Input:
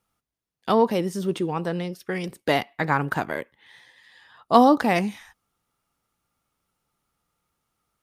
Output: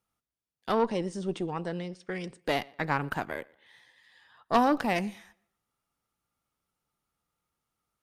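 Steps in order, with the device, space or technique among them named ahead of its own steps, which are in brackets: 0.79–2.42 steep low-pass 9200 Hz 72 dB/oct; rockabilly slapback (tube stage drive 11 dB, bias 0.65; tape echo 0.118 s, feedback 32%, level -24 dB, low-pass 5300 Hz); gain -3.5 dB

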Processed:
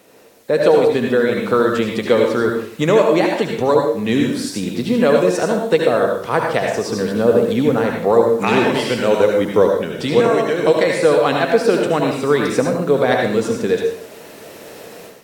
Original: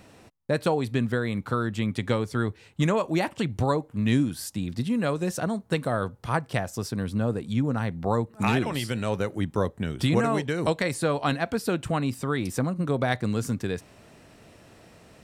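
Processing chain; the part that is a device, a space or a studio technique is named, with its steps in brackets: filmed off a television (BPF 220–7400 Hz; bell 460 Hz +9.5 dB 0.54 oct; reverb RT60 0.55 s, pre-delay 67 ms, DRR 1 dB; white noise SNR 34 dB; AGC gain up to 11.5 dB; AAC 64 kbps 48000 Hz)

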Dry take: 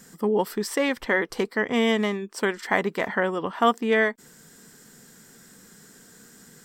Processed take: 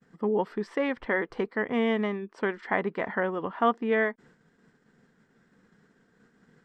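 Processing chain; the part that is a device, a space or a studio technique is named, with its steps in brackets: hearing-loss simulation (LPF 2200 Hz 12 dB/oct; expander -48 dBFS); gain -3.5 dB

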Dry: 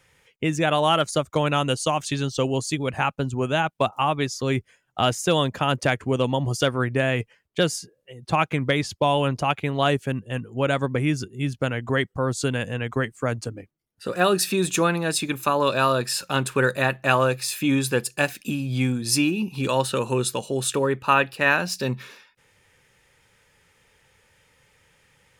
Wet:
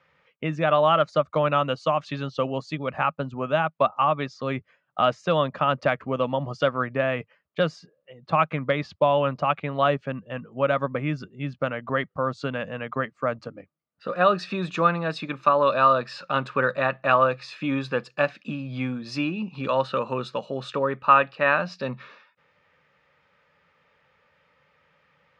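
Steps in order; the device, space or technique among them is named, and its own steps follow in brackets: guitar cabinet (speaker cabinet 91–4100 Hz, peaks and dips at 110 Hz -10 dB, 160 Hz +4 dB, 370 Hz -6 dB, 590 Hz +8 dB, 1200 Hz +10 dB, 3300 Hz -4 dB); gain -4 dB

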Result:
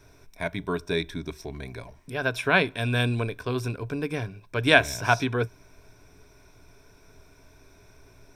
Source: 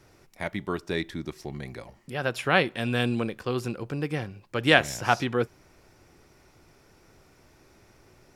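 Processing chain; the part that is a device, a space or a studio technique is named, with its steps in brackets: ripple EQ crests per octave 1.6, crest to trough 10 dB; low shelf boost with a cut just above (low shelf 70 Hz +7.5 dB; bell 190 Hz -3 dB 0.77 oct)

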